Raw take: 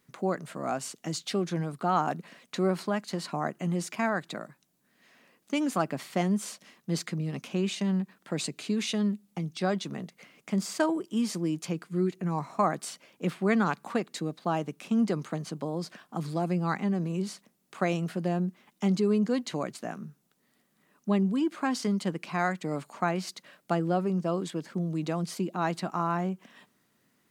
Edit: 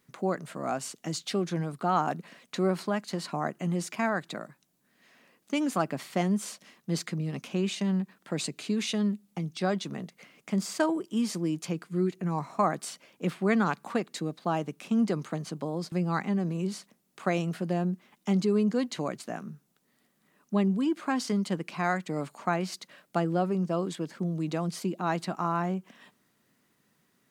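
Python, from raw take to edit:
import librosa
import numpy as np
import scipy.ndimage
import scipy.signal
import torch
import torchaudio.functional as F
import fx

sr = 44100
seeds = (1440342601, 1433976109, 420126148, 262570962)

y = fx.edit(x, sr, fx.cut(start_s=15.92, length_s=0.55), tone=tone)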